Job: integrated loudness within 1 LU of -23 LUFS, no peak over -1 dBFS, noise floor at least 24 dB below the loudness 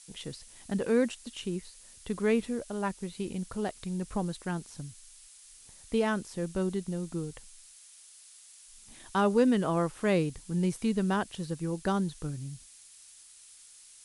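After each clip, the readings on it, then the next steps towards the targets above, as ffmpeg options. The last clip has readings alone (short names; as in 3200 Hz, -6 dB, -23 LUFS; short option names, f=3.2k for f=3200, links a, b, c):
noise floor -54 dBFS; noise floor target -56 dBFS; loudness -31.5 LUFS; peak -12.5 dBFS; loudness target -23.0 LUFS
-> -af "afftdn=nr=6:nf=-54"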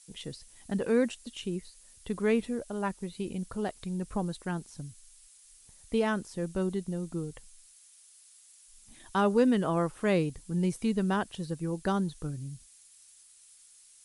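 noise floor -58 dBFS; loudness -31.5 LUFS; peak -12.5 dBFS; loudness target -23.0 LUFS
-> -af "volume=8.5dB"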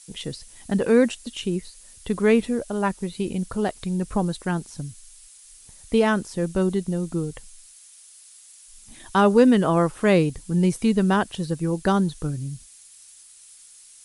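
loudness -23.0 LUFS; peak -4.0 dBFS; noise floor -49 dBFS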